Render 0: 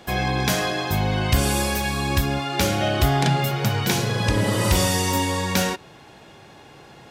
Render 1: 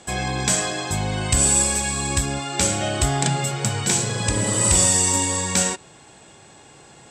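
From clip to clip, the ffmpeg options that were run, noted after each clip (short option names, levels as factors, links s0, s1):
-af "lowpass=f=7900:t=q:w=13,volume=0.75"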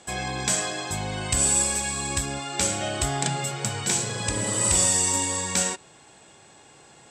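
-af "lowshelf=f=270:g=-4.5,volume=0.668"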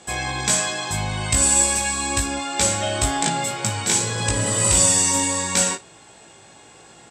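-af "aecho=1:1:18|55:0.668|0.168,volume=1.41"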